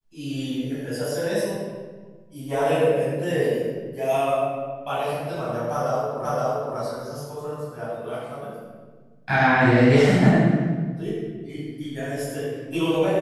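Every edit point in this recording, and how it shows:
0:06.25: the same again, the last 0.52 s

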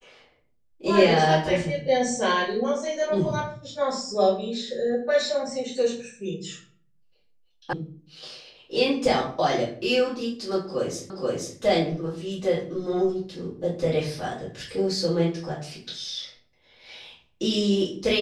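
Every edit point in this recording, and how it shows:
0:07.73: cut off before it has died away
0:11.10: the same again, the last 0.48 s

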